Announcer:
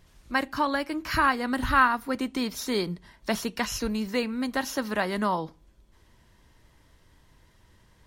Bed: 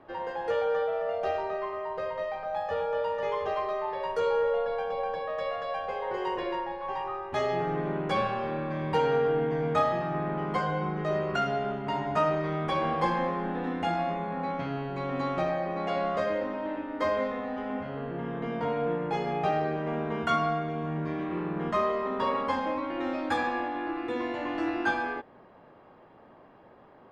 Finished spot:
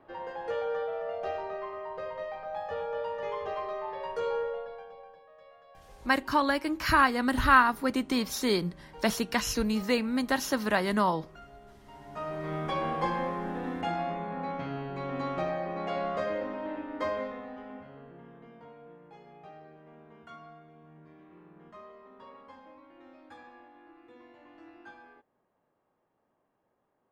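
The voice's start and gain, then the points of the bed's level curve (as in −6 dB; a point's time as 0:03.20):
5.75 s, +0.5 dB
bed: 0:04.36 −4.5 dB
0:05.25 −23 dB
0:11.84 −23 dB
0:12.53 −3 dB
0:16.97 −3 dB
0:18.82 −22.5 dB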